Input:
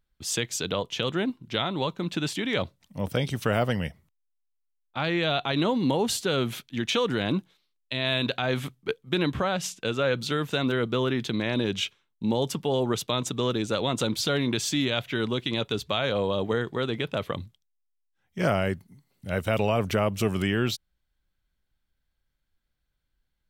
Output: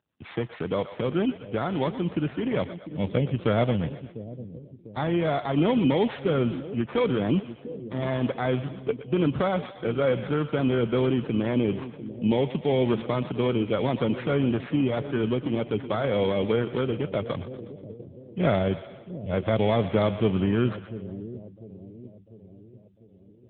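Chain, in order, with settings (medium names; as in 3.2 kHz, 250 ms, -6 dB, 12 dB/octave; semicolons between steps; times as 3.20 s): bit-reversed sample order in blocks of 16 samples; two-band feedback delay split 510 Hz, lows 698 ms, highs 121 ms, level -12.5 dB; trim +3 dB; AMR-NB 7.95 kbps 8 kHz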